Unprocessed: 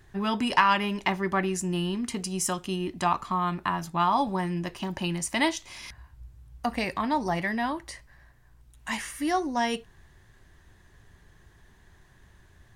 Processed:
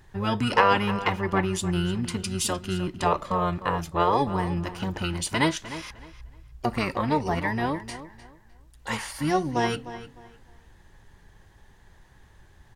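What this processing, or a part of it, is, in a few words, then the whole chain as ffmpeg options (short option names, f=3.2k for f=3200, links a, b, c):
octave pedal: -filter_complex "[0:a]asplit=2[a][b];[b]asetrate=22050,aresample=44100,atempo=2,volume=-3dB[c];[a][c]amix=inputs=2:normalize=0,asplit=2[d][e];[e]adelay=304,lowpass=f=4.3k:p=1,volume=-13.5dB,asplit=2[f][g];[g]adelay=304,lowpass=f=4.3k:p=1,volume=0.26,asplit=2[h][i];[i]adelay=304,lowpass=f=4.3k:p=1,volume=0.26[j];[d][f][h][j]amix=inputs=4:normalize=0"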